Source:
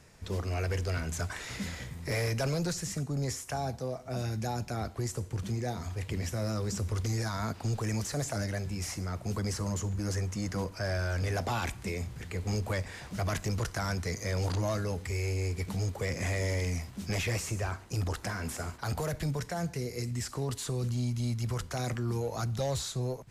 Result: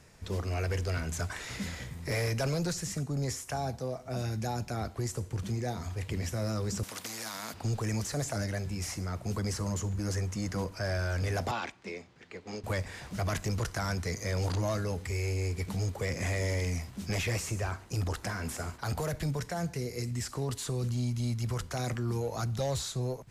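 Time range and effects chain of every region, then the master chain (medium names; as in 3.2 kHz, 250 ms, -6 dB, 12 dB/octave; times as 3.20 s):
6.83–7.54 s: high-pass 200 Hz 24 dB/octave + peaking EQ 390 Hz -14 dB 0.38 oct + spectrum-flattening compressor 2:1
11.51–12.64 s: three-band isolator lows -21 dB, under 200 Hz, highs -24 dB, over 6.1 kHz + upward expansion, over -47 dBFS
whole clip: none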